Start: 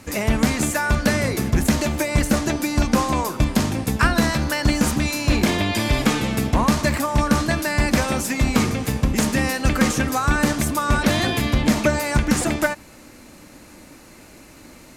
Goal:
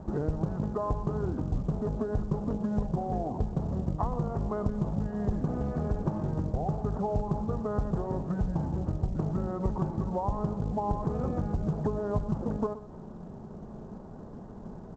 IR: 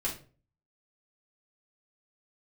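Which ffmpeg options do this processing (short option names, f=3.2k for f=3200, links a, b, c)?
-filter_complex "[0:a]lowpass=f=1.3k:w=0.5412,lowpass=f=1.3k:w=1.3066,acompressor=threshold=-31dB:ratio=5,asetrate=31183,aresample=44100,atempo=1.41421,asplit=2[a][b];[b]aecho=0:1:124:0.178[c];[a][c]amix=inputs=2:normalize=0,volume=3dB" -ar 16000 -c:a pcm_mulaw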